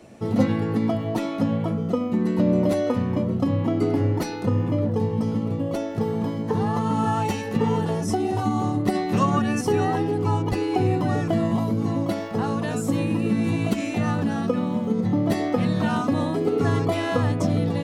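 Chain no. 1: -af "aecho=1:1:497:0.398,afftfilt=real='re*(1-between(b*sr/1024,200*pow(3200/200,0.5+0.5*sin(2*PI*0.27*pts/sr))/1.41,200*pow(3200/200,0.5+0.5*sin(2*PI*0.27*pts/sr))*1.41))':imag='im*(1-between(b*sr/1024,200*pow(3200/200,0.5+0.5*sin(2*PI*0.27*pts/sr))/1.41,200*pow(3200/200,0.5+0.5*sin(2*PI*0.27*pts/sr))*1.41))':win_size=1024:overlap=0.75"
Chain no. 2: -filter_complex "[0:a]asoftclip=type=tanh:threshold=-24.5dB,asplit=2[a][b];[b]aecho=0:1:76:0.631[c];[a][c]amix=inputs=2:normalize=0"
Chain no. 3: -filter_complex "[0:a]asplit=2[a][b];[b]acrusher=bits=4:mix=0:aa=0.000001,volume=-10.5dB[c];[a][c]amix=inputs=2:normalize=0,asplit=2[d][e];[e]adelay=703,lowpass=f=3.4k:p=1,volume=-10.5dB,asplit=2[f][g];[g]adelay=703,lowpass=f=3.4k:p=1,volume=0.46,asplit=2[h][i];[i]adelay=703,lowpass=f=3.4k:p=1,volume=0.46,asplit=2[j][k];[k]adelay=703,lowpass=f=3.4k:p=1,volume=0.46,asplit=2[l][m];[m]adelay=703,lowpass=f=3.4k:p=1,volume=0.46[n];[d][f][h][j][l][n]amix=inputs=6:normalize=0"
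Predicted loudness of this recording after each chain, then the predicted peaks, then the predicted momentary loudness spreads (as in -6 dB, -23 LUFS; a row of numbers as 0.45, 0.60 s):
-24.0, -27.0, -21.0 LUFS; -7.0, -20.5, -4.5 dBFS; 4, 3, 3 LU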